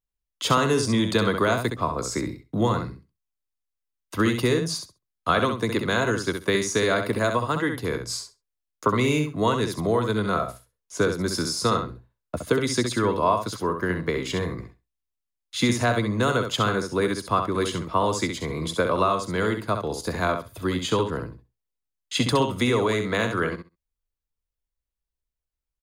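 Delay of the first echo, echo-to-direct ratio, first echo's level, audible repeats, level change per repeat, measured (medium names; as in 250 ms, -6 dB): 66 ms, -7.0 dB, -7.0 dB, 2, -16.5 dB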